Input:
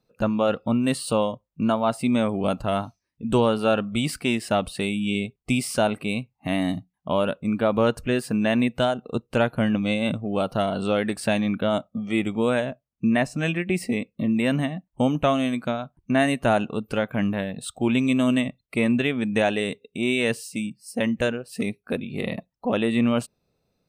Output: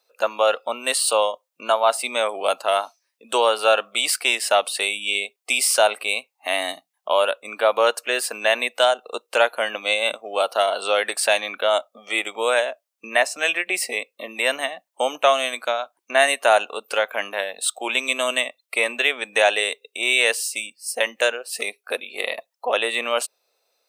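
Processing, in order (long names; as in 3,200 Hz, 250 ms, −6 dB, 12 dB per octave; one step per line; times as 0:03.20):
high-pass filter 520 Hz 24 dB per octave
high-shelf EQ 3,000 Hz +7.5 dB
level +5.5 dB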